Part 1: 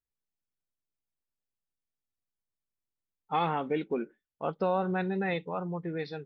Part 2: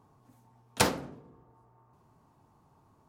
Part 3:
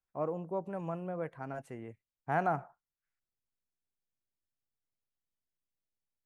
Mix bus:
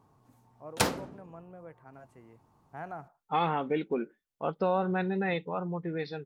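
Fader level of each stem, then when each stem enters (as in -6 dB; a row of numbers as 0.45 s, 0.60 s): +0.5 dB, -1.5 dB, -10.5 dB; 0.00 s, 0.00 s, 0.45 s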